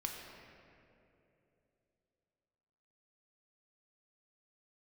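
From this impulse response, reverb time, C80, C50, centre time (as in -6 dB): 2.9 s, 3.0 dB, 2.0 dB, 97 ms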